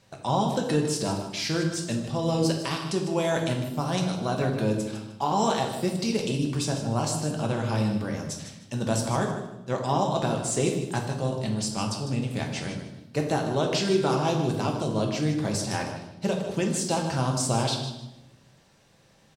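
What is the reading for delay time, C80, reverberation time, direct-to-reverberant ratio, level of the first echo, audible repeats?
153 ms, 7.0 dB, 0.90 s, 1.0 dB, -10.5 dB, 2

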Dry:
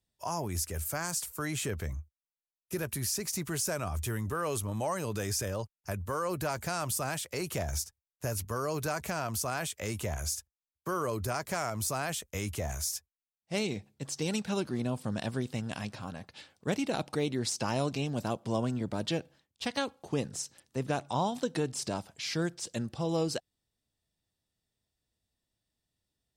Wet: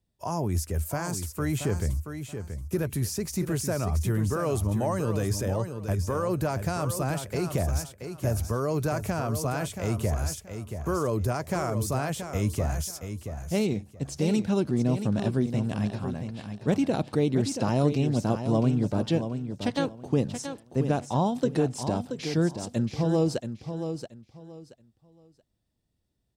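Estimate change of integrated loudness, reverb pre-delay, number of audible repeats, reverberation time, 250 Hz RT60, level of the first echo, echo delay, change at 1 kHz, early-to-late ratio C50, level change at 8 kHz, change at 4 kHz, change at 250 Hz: +5.5 dB, no reverb, 3, no reverb, no reverb, -8.5 dB, 678 ms, +2.5 dB, no reverb, -2.0 dB, -1.5 dB, +8.5 dB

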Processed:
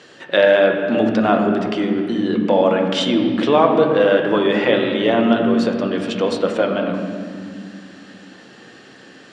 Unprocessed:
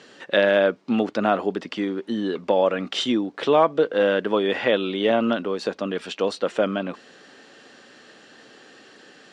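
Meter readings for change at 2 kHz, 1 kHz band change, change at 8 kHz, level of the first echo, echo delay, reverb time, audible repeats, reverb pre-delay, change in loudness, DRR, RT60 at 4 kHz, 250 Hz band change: +4.5 dB, +5.0 dB, no reading, no echo, no echo, 2.3 s, no echo, 3 ms, +5.5 dB, 2.5 dB, 1.7 s, +8.0 dB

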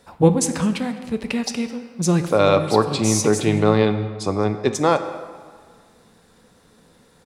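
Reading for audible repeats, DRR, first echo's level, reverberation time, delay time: 1, 8.5 dB, -22.5 dB, 1.7 s, 207 ms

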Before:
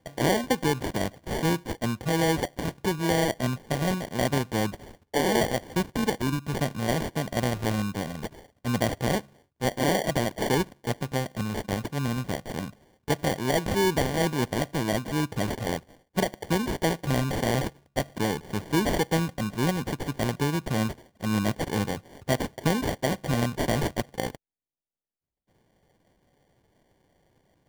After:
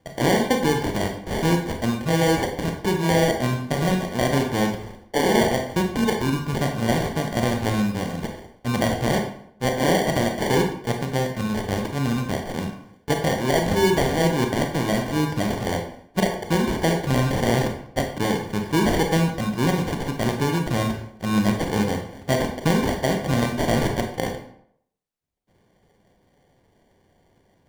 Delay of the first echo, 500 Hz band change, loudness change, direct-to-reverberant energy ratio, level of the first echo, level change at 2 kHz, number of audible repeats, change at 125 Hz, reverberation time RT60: no echo, +5.0 dB, +5.0 dB, 3.0 dB, no echo, +4.5 dB, no echo, +4.5 dB, 0.70 s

